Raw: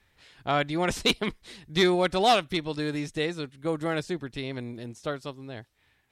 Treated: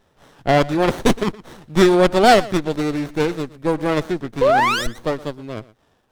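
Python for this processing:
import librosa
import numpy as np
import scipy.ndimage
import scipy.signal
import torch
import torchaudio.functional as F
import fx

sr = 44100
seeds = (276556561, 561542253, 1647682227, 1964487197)

y = fx.highpass(x, sr, hz=150.0, slope=6)
y = fx.peak_eq(y, sr, hz=600.0, db=3.0, octaves=0.77)
y = fx.spec_paint(y, sr, seeds[0], shape='rise', start_s=4.41, length_s=0.46, low_hz=470.0, high_hz=2100.0, level_db=-21.0)
y = y + 10.0 ** (-19.5 / 20.0) * np.pad(y, (int(117 * sr / 1000.0), 0))[:len(y)]
y = fx.running_max(y, sr, window=17)
y = y * librosa.db_to_amplitude(9.0)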